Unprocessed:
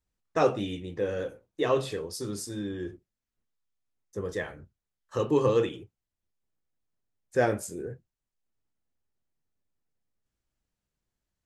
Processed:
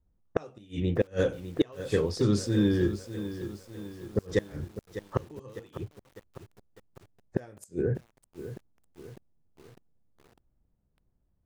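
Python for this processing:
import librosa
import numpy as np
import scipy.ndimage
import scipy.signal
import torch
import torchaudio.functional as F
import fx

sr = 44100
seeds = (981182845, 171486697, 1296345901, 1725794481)

y = fx.env_lowpass(x, sr, base_hz=780.0, full_db=-25.5)
y = fx.bass_treble(y, sr, bass_db=6, treble_db=6)
y = fx.gate_flip(y, sr, shuts_db=-20.0, range_db=-32)
y = fx.echo_crushed(y, sr, ms=602, feedback_pct=55, bits=9, wet_db=-11.5)
y = y * 10.0 ** (7.5 / 20.0)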